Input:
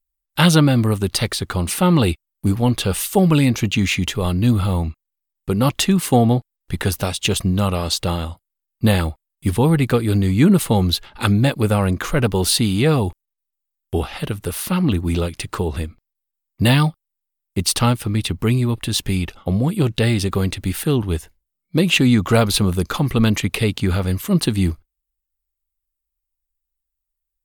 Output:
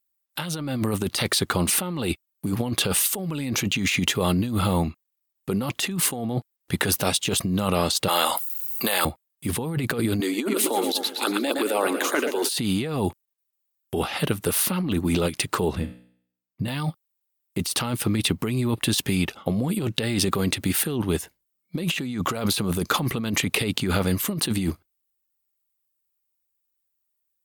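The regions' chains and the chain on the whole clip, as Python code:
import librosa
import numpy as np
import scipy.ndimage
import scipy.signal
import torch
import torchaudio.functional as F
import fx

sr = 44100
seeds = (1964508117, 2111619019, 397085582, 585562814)

y = fx.chain(x, sr, fx.highpass(hz=670.0, slope=12),
    fx.high_shelf(hz=11000.0, db=11.5),
    fx.env_flatten(amount_pct=70), at=(8.08, 9.05))
y = fx.chain(y, sr, fx.steep_highpass(hz=270.0, slope=48),
    fx.echo_feedback(ms=115, feedback_pct=51, wet_db=-10.0),
    fx.filter_lfo_notch(shape='saw_up', hz=3.6, low_hz=440.0, high_hz=3100.0, q=2.0), at=(10.2, 12.49))
y = fx.chain(y, sr, fx.bass_treble(bass_db=11, treble_db=-6),
    fx.comb_fb(f0_hz=61.0, decay_s=0.57, harmonics='all', damping=0.0, mix_pct=70), at=(15.75, 16.68))
y = scipy.signal.sosfilt(scipy.signal.butter(2, 150.0, 'highpass', fs=sr, output='sos'), y)
y = fx.high_shelf(y, sr, hz=9700.0, db=4.0)
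y = fx.over_compress(y, sr, threshold_db=-23.0, ratio=-1.0)
y = y * librosa.db_to_amplitude(-1.0)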